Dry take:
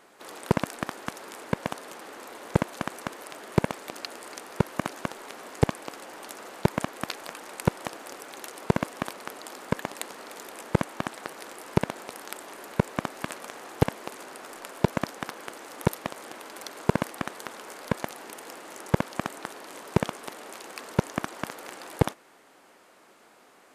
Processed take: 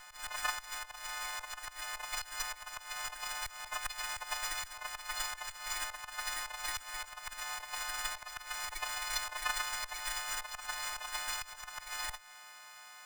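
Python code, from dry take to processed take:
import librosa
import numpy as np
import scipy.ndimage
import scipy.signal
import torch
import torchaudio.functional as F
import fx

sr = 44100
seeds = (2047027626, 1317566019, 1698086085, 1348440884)

y = fx.freq_snap(x, sr, grid_st=3)
y = scipy.signal.sosfilt(scipy.signal.cheby2(4, 40, 380.0, 'highpass', fs=sr, output='sos'), y)
y = fx.auto_swell(y, sr, attack_ms=410.0)
y = fx.stretch_vocoder(y, sr, factor=0.55)
y = fx.running_max(y, sr, window=3)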